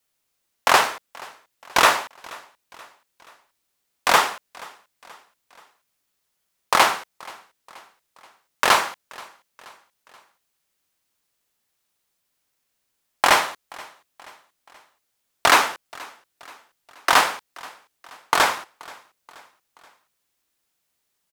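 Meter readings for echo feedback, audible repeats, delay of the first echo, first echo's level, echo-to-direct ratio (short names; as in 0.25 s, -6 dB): 51%, 3, 0.479 s, -23.0 dB, -22.0 dB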